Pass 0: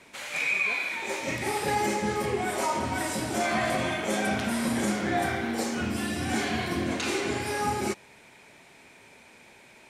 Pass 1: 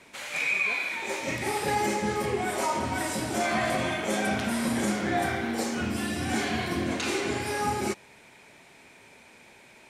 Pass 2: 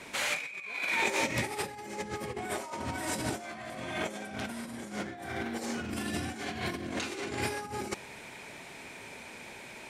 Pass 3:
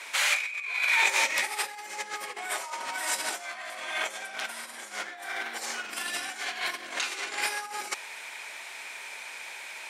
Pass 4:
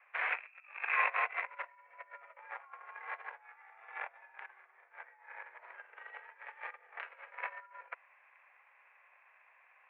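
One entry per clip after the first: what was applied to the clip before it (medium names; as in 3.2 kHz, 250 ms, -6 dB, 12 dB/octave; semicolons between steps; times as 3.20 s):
no audible change
compressor with a negative ratio -34 dBFS, ratio -0.5
high-pass 1 kHz 12 dB/octave; trim +7 dB
Chebyshev shaper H 7 -18 dB, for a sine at -11 dBFS; mistuned SSB +150 Hz 300–2000 Hz; trim -1 dB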